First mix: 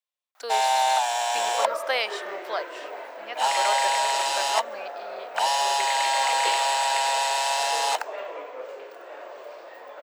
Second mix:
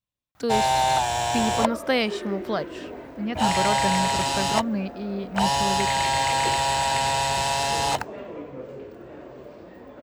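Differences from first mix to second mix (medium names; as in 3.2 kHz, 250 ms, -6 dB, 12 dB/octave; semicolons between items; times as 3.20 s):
second sound -7.0 dB; master: remove high-pass 580 Hz 24 dB/octave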